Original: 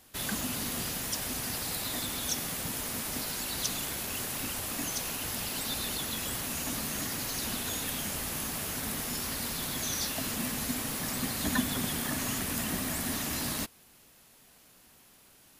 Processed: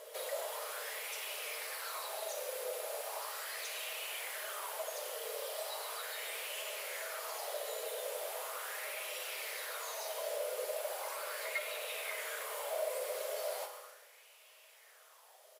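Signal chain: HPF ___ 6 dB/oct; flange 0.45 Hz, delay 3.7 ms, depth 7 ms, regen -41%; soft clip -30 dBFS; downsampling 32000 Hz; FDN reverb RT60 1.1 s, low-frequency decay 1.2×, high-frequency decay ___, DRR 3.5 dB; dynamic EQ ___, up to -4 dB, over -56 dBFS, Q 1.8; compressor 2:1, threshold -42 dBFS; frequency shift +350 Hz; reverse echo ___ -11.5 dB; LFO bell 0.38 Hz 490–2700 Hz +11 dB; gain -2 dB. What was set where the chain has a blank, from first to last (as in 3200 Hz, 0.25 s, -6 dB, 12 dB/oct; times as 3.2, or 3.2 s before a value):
98 Hz, 0.95×, 5700 Hz, 0.43 s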